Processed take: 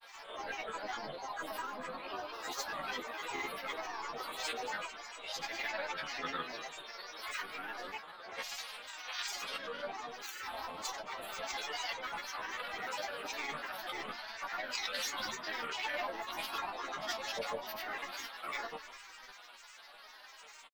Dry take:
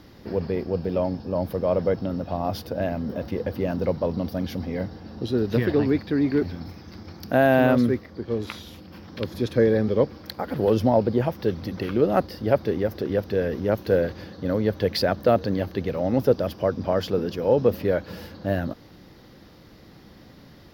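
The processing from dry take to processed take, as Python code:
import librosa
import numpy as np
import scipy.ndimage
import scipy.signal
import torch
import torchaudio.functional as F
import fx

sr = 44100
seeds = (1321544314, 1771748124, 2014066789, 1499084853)

y = fx.spec_swells(x, sr, rise_s=0.43)
y = fx.over_compress(y, sr, threshold_db=-24.0, ratio=-1.0)
y = fx.echo_tape(y, sr, ms=247, feedback_pct=68, wet_db=-11.5, lp_hz=4600.0, drive_db=7.0, wow_cents=9)
y = fx.spec_gate(y, sr, threshold_db=-15, keep='weak')
y = fx.high_shelf(y, sr, hz=8700.0, db=-6.0)
y = fx.resonator_bank(y, sr, root=57, chord='major', decay_s=0.28)
y = fx.dispersion(y, sr, late='lows', ms=42.0, hz=440.0)
y = fx.granulator(y, sr, seeds[0], grain_ms=100.0, per_s=20.0, spray_ms=100.0, spread_st=7)
y = fx.low_shelf(y, sr, hz=410.0, db=-11.0)
y = y * 10.0 ** (17.5 / 20.0)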